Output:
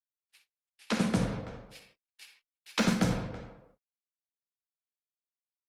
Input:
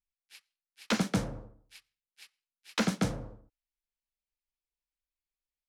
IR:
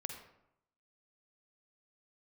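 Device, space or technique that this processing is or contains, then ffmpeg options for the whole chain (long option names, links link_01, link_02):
speakerphone in a meeting room: -filter_complex "[1:a]atrim=start_sample=2205[link_01];[0:a][link_01]afir=irnorm=-1:irlink=0,asplit=2[link_02][link_03];[link_03]adelay=330,highpass=300,lowpass=3400,asoftclip=type=hard:threshold=-28dB,volume=-14dB[link_04];[link_02][link_04]amix=inputs=2:normalize=0,dynaudnorm=framelen=550:gausssize=3:maxgain=8.5dB,agate=range=-34dB:threshold=-57dB:ratio=16:detection=peak,volume=-4.5dB" -ar 48000 -c:a libopus -b:a 24k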